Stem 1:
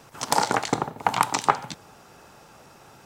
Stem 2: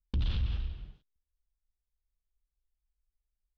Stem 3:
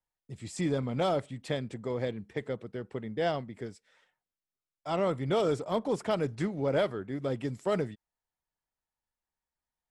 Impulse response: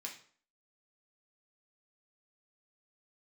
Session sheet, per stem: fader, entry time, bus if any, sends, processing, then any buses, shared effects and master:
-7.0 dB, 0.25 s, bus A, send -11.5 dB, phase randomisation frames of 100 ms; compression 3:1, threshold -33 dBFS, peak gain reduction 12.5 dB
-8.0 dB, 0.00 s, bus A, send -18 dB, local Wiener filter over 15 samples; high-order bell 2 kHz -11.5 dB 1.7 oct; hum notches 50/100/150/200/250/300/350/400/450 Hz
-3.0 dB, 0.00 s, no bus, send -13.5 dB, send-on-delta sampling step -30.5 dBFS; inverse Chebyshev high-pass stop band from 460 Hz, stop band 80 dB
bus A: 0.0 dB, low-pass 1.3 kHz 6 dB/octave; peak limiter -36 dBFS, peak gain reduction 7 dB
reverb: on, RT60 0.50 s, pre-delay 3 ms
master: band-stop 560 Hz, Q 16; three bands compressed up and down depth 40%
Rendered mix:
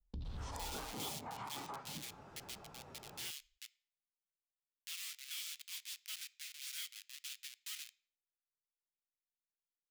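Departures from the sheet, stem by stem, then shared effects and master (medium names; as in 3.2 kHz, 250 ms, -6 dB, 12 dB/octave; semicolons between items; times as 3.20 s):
stem 1: send off; master: missing band-stop 560 Hz, Q 16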